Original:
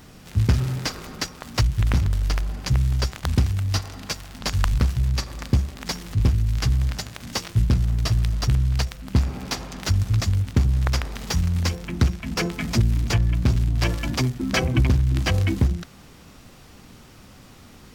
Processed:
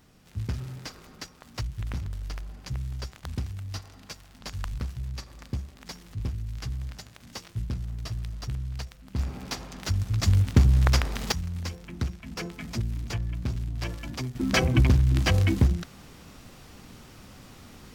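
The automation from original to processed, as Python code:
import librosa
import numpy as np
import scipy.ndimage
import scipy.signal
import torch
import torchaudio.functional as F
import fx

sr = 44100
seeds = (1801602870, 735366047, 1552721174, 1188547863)

y = fx.gain(x, sr, db=fx.steps((0.0, -12.5), (9.19, -6.0), (10.23, 1.0), (11.32, -10.5), (14.35, -1.0)))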